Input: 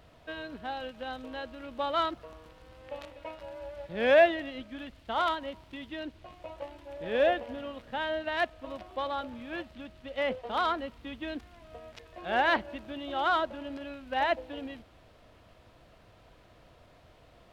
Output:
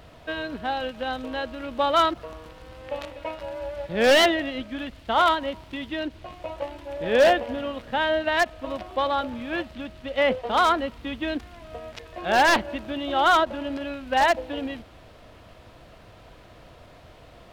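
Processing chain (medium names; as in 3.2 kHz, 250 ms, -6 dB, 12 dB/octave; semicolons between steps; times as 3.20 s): wavefolder -20 dBFS; endings held to a fixed fall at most 570 dB/s; trim +9 dB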